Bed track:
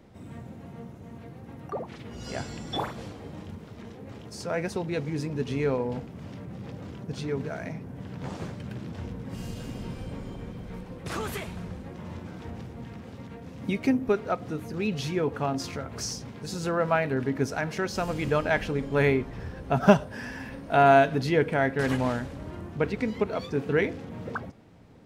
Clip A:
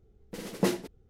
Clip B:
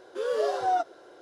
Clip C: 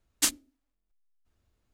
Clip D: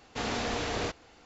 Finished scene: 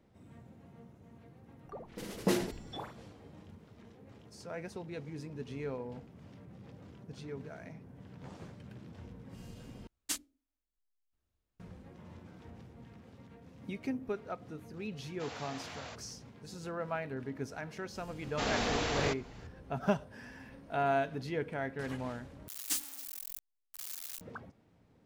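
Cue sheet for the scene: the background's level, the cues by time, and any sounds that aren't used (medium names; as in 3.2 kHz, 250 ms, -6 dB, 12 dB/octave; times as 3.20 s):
bed track -12.5 dB
1.64 s: add A -4 dB + decay stretcher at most 75 dB/s
9.87 s: replace with C -11 dB
15.04 s: add D -12 dB + steep high-pass 530 Hz
18.22 s: add D -0.5 dB + short-mantissa float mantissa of 8-bit
22.48 s: replace with C -12.5 dB + zero-crossing glitches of -18 dBFS
not used: B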